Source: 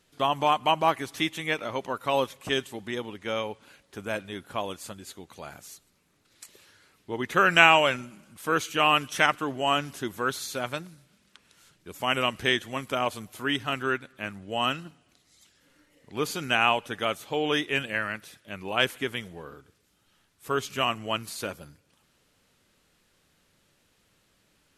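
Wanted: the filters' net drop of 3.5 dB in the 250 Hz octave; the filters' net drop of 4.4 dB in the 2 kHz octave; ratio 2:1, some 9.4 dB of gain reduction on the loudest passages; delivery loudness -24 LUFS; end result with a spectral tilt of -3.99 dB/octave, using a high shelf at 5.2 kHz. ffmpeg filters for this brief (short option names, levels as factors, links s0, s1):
-af "equalizer=f=250:t=o:g=-4.5,equalizer=f=2000:t=o:g=-5,highshelf=f=5200:g=-7,acompressor=threshold=0.0251:ratio=2,volume=3.55"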